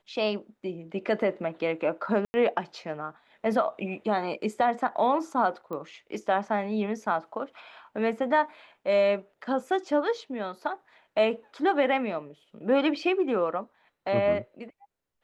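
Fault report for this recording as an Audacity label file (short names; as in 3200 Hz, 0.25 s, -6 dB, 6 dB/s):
2.250000	2.340000	gap 90 ms
5.730000	5.730000	pop -25 dBFS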